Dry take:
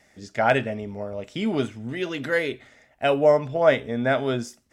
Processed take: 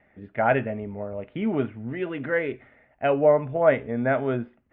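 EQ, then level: inverse Chebyshev low-pass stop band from 5300 Hz, stop band 40 dB; air absorption 290 m; 0.0 dB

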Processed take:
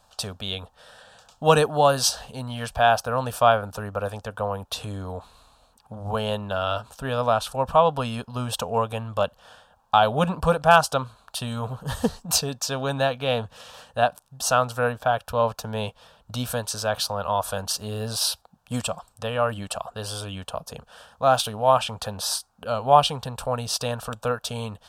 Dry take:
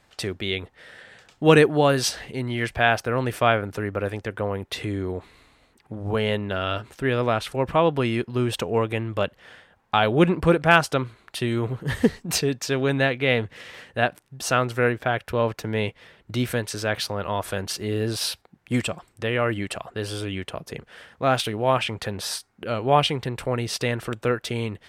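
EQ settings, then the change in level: bell 120 Hz -7 dB 1.8 oct; fixed phaser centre 850 Hz, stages 4; +5.0 dB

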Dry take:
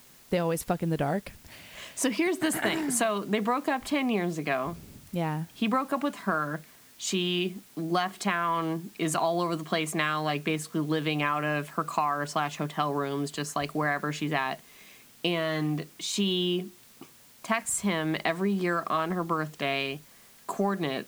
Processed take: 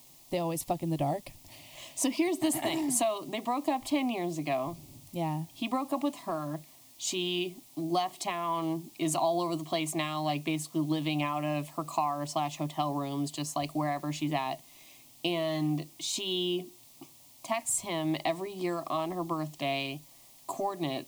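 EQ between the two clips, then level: fixed phaser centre 300 Hz, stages 8; 0.0 dB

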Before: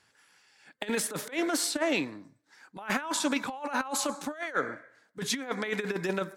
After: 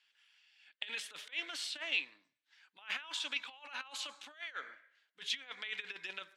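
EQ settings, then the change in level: band-pass 3000 Hz, Q 3.6; +2.5 dB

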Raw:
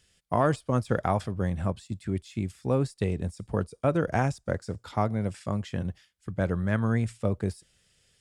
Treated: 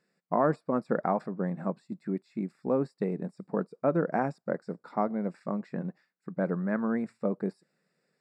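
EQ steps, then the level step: running mean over 14 samples; brick-wall FIR high-pass 150 Hz; 0.0 dB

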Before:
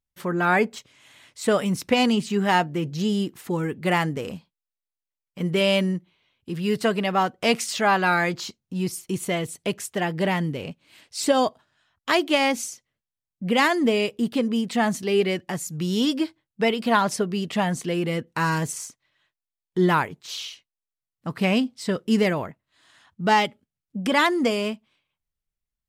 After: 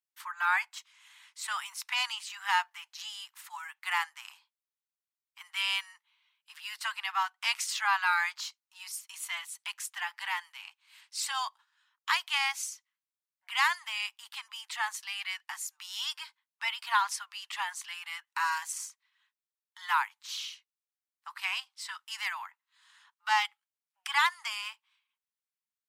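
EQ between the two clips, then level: steep high-pass 870 Hz 72 dB/oct; -4.5 dB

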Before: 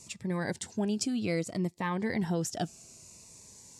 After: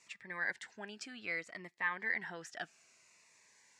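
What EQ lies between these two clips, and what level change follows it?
band-pass 1800 Hz, Q 3.2; +6.0 dB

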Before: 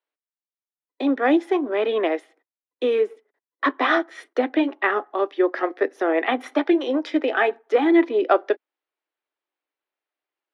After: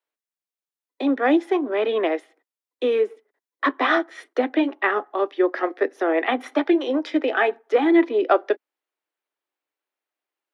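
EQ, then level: steep high-pass 180 Hz 48 dB/oct; 0.0 dB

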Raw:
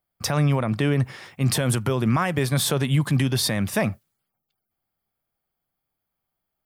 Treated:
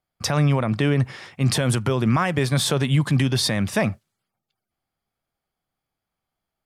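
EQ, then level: air absorption 56 m; high shelf 4500 Hz +5.5 dB; +1.5 dB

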